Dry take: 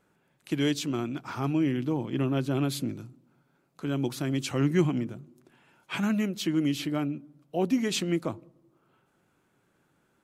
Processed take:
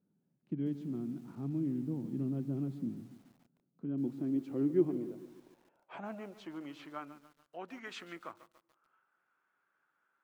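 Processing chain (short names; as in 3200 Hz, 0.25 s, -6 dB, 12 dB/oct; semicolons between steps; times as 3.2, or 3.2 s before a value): band-pass sweep 200 Hz -> 1400 Hz, 3.69–7.35; lo-fi delay 0.144 s, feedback 55%, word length 9-bit, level -14 dB; gain -2 dB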